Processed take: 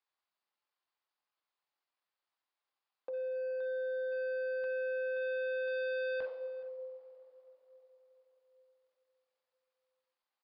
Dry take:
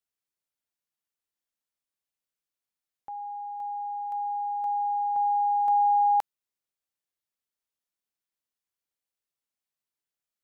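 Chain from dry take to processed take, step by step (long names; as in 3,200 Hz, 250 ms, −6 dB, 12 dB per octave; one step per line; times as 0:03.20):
coupled-rooms reverb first 0.6 s, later 4.8 s, from −20 dB, DRR 5.5 dB
in parallel at 0 dB: downward compressor, threshold −33 dBFS, peak gain reduction 12.5 dB
on the sum: Bessel high-pass filter 580 Hz, order 6
hard clipping −30 dBFS, distortion −6 dB
pitch shifter −8 semitones
parametric band 980 Hz +9.5 dB 1.1 octaves
on a send: single-tap delay 424 ms −21.5 dB
on the sum: downsampling to 11,025 Hz
notch filter 920 Hz, Q 23
level −7 dB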